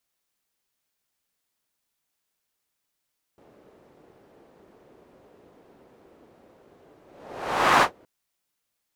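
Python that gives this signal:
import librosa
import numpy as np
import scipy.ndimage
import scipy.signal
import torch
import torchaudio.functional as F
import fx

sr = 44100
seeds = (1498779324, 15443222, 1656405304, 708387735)

y = fx.whoosh(sr, seeds[0], length_s=4.67, peak_s=4.44, rise_s=0.86, fall_s=0.12, ends_hz=430.0, peak_hz=1100.0, q=1.4, swell_db=38)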